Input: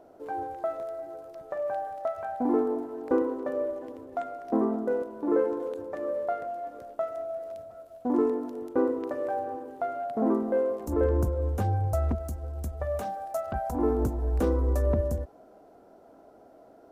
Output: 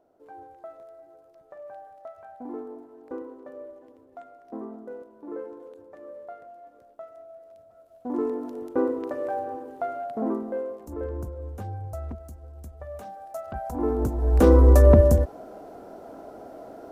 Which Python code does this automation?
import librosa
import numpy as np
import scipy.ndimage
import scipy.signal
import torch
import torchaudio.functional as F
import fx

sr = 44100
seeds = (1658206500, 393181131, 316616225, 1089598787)

y = fx.gain(x, sr, db=fx.line((7.52, -11.5), (8.5, 1.0), (9.91, 1.0), (10.95, -8.0), (12.92, -8.0), (14.1, 2.0), (14.55, 11.5)))